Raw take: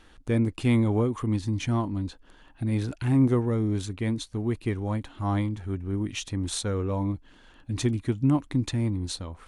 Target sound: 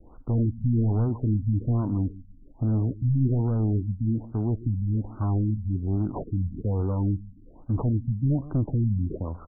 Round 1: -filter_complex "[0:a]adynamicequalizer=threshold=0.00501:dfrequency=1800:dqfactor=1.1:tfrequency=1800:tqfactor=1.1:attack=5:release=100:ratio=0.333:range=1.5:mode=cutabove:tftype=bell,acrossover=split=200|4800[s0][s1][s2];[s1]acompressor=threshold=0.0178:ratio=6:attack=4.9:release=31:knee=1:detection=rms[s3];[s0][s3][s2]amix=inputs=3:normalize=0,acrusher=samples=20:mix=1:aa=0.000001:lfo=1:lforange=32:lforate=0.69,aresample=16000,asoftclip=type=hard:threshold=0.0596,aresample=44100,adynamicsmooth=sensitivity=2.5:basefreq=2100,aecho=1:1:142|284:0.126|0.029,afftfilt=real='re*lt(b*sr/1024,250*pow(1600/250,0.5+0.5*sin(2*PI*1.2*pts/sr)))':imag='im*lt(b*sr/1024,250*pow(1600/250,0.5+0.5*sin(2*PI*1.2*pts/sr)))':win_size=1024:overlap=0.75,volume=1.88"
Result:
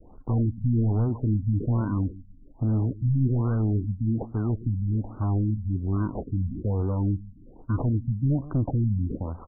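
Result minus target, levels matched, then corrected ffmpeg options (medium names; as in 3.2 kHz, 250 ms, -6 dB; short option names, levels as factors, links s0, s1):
decimation with a swept rate: distortion +5 dB
-filter_complex "[0:a]adynamicequalizer=threshold=0.00501:dfrequency=1800:dqfactor=1.1:tfrequency=1800:tqfactor=1.1:attack=5:release=100:ratio=0.333:range=1.5:mode=cutabove:tftype=bell,acrossover=split=200|4800[s0][s1][s2];[s1]acompressor=threshold=0.0178:ratio=6:attack=4.9:release=31:knee=1:detection=rms[s3];[s0][s3][s2]amix=inputs=3:normalize=0,acrusher=samples=7:mix=1:aa=0.000001:lfo=1:lforange=11.2:lforate=0.69,aresample=16000,asoftclip=type=hard:threshold=0.0596,aresample=44100,adynamicsmooth=sensitivity=2.5:basefreq=2100,aecho=1:1:142|284:0.126|0.029,afftfilt=real='re*lt(b*sr/1024,250*pow(1600/250,0.5+0.5*sin(2*PI*1.2*pts/sr)))':imag='im*lt(b*sr/1024,250*pow(1600/250,0.5+0.5*sin(2*PI*1.2*pts/sr)))':win_size=1024:overlap=0.75,volume=1.88"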